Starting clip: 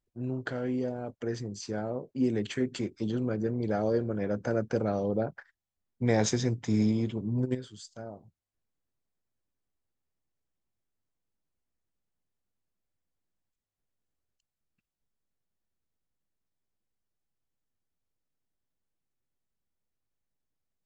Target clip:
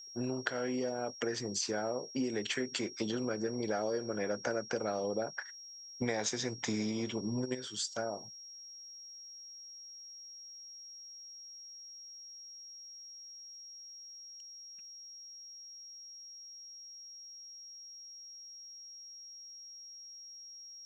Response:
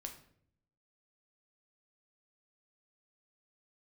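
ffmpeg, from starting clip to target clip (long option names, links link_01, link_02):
-af "highpass=frequency=810:poles=1,acompressor=threshold=-47dB:ratio=6,aeval=exprs='val(0)+0.000794*sin(2*PI*5600*n/s)':channel_layout=same,volume=14.5dB"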